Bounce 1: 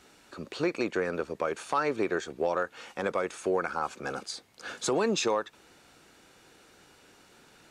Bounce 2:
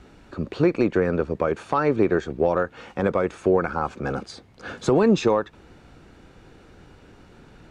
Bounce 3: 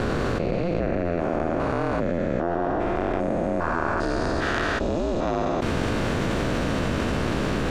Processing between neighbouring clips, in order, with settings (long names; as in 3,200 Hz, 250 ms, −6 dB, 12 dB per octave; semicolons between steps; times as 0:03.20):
RIAA equalisation playback; level +5 dB
spectrum averaged block by block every 400 ms; ring modulation 170 Hz; envelope flattener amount 100%